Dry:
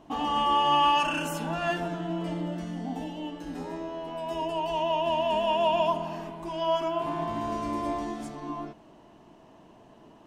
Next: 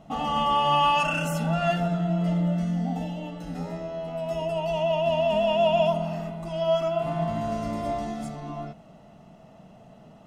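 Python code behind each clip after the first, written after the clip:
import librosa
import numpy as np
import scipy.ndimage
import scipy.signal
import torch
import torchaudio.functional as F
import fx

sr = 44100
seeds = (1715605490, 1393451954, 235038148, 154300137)

y = fx.peak_eq(x, sr, hz=180.0, db=9.5, octaves=0.89)
y = y + 0.67 * np.pad(y, (int(1.5 * sr / 1000.0), 0))[:len(y)]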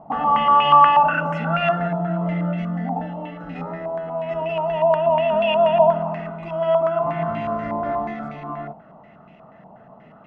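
y = fx.low_shelf(x, sr, hz=76.0, db=-11.5)
y = fx.filter_held_lowpass(y, sr, hz=8.3, low_hz=920.0, high_hz=2400.0)
y = F.gain(torch.from_numpy(y), 2.5).numpy()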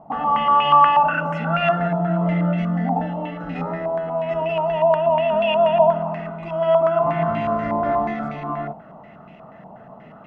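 y = fx.rider(x, sr, range_db=4, speed_s=2.0)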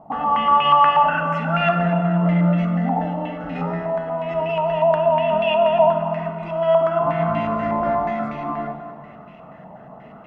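y = fx.rev_plate(x, sr, seeds[0], rt60_s=2.1, hf_ratio=0.8, predelay_ms=0, drr_db=6.5)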